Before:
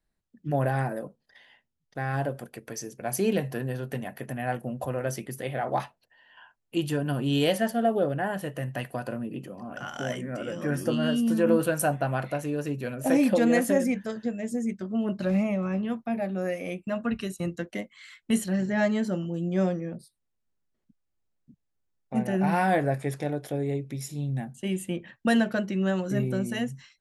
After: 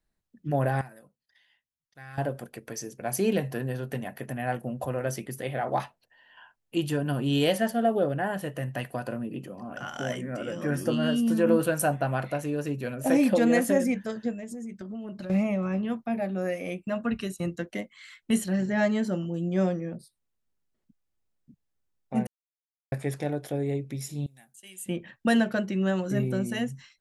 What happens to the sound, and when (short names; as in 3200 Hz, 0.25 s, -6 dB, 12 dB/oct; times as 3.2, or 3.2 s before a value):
0.81–2.18 passive tone stack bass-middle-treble 5-5-5
14.32–15.3 compressor 12:1, threshold -34 dBFS
22.27–22.92 mute
24.26–24.86 pre-emphasis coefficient 0.97